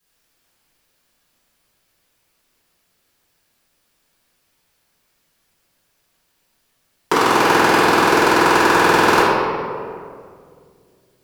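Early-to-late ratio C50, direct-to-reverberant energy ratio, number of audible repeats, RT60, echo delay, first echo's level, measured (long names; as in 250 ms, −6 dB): −3.0 dB, −12.0 dB, no echo audible, 2.2 s, no echo audible, no echo audible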